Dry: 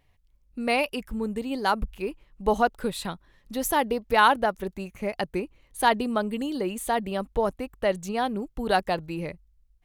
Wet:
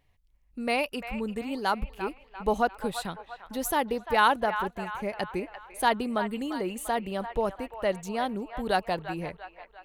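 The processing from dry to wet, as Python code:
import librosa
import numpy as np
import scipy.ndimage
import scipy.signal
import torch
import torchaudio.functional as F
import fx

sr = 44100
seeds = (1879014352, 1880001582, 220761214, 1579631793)

y = fx.echo_wet_bandpass(x, sr, ms=345, feedback_pct=49, hz=1400.0, wet_db=-9)
y = y * 10.0 ** (-3.0 / 20.0)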